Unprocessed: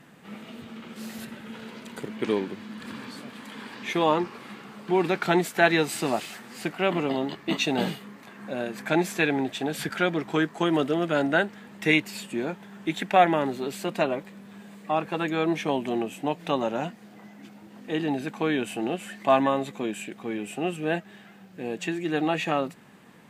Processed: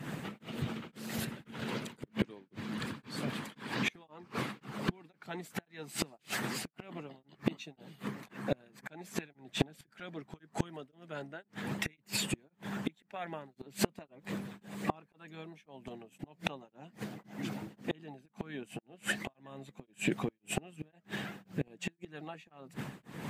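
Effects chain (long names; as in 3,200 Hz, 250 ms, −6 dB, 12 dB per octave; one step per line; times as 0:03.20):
parametric band 140 Hz +14.5 dB 0.93 octaves
gate with flip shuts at −20 dBFS, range −29 dB
downward compressor 6 to 1, threshold −40 dBFS, peak gain reduction 13.5 dB
shaped tremolo triangle 1.9 Hz, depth 100%
harmonic and percussive parts rebalanced harmonic −12 dB
level +15.5 dB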